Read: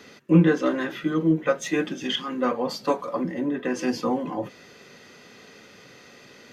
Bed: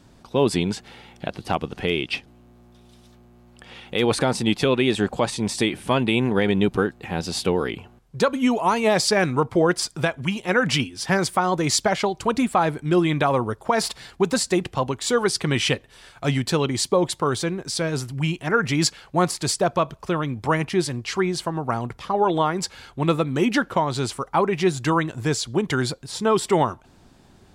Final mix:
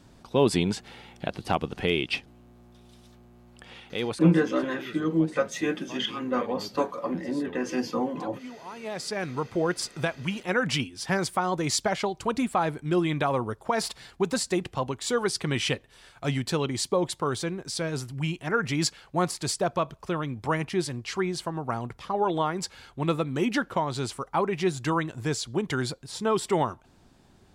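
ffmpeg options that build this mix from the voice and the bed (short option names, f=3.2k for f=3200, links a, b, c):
-filter_complex "[0:a]adelay=3900,volume=-3dB[a];[1:a]volume=14.5dB,afade=t=out:st=3.57:d=0.74:silence=0.1,afade=t=in:st=8.68:d=1.25:silence=0.149624[b];[a][b]amix=inputs=2:normalize=0"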